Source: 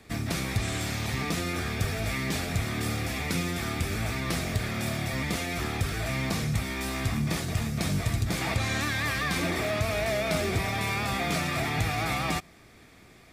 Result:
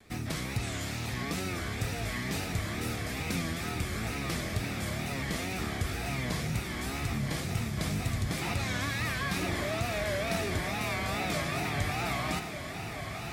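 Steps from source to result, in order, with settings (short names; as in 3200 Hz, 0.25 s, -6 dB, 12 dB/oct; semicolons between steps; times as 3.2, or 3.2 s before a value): diffused feedback echo 1.119 s, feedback 60%, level -7.5 dB; wow and flutter 130 cents; gain -4.5 dB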